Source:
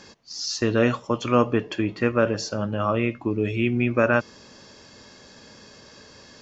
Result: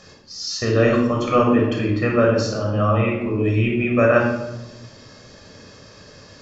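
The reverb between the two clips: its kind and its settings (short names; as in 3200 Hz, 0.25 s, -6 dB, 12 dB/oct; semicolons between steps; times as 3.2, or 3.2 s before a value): shoebox room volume 3400 m³, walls furnished, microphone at 6.2 m; gain -2 dB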